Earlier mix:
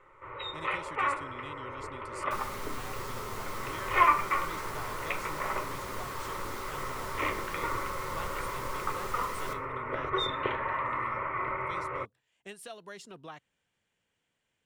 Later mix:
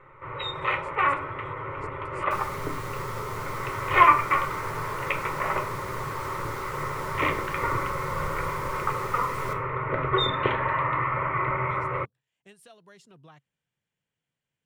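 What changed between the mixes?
speech -8.0 dB; first sound +6.0 dB; master: add bell 140 Hz +11 dB 0.7 oct

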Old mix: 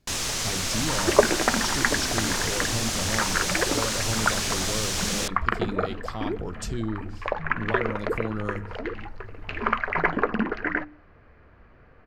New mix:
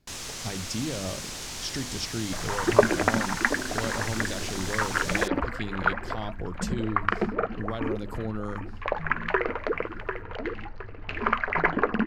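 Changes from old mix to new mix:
first sound -8.5 dB; second sound: entry +1.60 s; reverb: off

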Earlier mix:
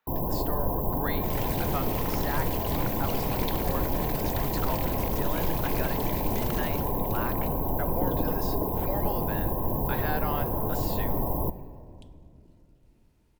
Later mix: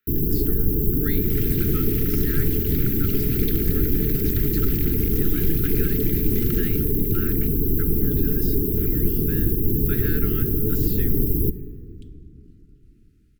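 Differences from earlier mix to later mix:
first sound +8.5 dB; master: add Chebyshev band-stop 440–1300 Hz, order 5

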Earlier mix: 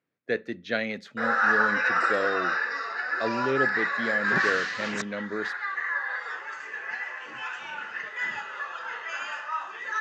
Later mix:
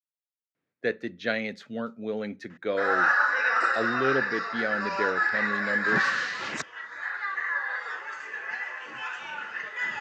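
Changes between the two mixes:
speech: entry +0.55 s; background: entry +1.60 s

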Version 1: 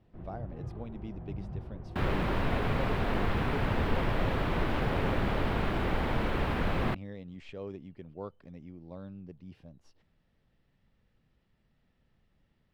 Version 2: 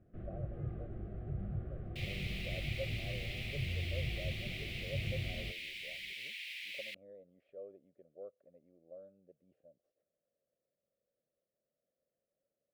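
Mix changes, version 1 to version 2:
speech: add band-pass 560 Hz, Q 6.2; second sound: add steep high-pass 2100 Hz 72 dB/oct; master: add Butterworth band-stop 930 Hz, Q 2.2

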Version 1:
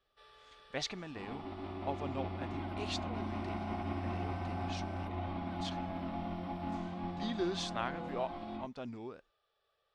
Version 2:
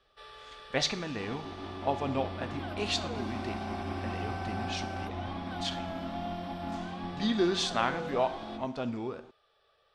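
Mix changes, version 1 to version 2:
speech +5.0 dB; first sound +10.5 dB; reverb: on

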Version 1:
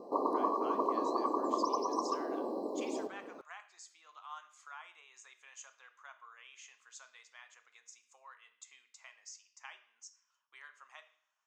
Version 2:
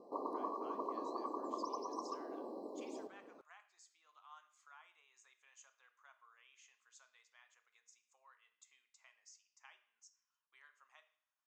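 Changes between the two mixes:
speech -11.0 dB; background -9.5 dB

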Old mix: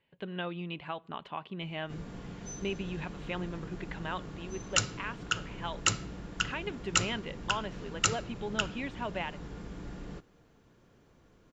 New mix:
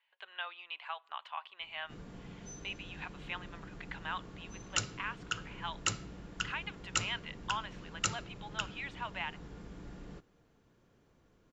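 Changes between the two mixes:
speech: add HPF 860 Hz 24 dB/oct; background -5.5 dB

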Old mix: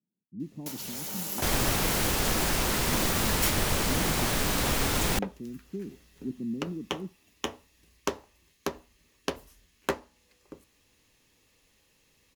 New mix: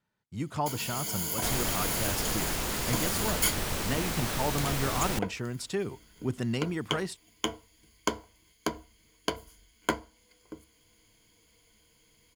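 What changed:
speech: remove Butterworth band-pass 240 Hz, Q 1.5; first sound: add ripple EQ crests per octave 1.8, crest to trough 13 dB; second sound -5.0 dB

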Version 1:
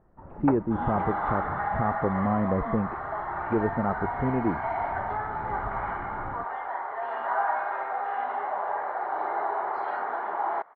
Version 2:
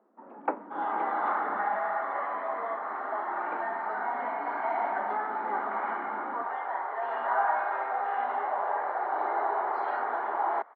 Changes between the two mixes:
speech: muted; master: add steep high-pass 210 Hz 72 dB/oct

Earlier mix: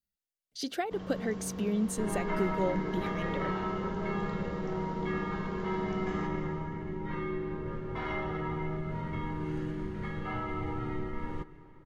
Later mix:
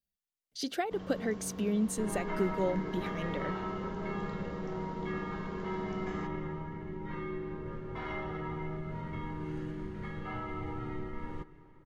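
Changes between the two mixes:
first sound: send -10.5 dB; second sound -3.5 dB

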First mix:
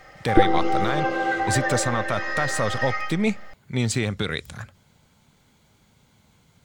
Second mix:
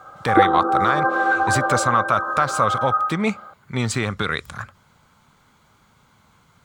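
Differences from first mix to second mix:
background: add brick-wall FIR band-pass 170–1700 Hz; master: add bell 1200 Hz +12.5 dB 0.91 oct

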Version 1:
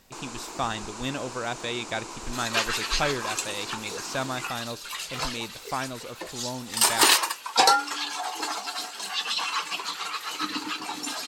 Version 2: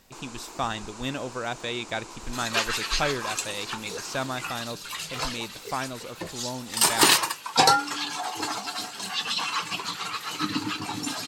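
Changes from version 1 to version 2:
first sound -4.0 dB; second sound: remove HPF 360 Hz 12 dB/oct

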